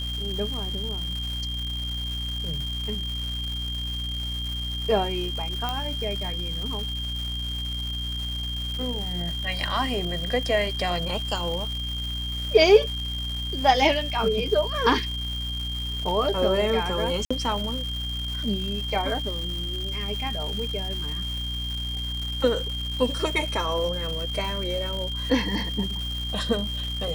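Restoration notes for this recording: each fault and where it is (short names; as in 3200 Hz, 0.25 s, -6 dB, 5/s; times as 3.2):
crackle 480/s -32 dBFS
hum 60 Hz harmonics 5 -32 dBFS
tone 3200 Hz -31 dBFS
5.69 pop -13 dBFS
17.25–17.3 gap 55 ms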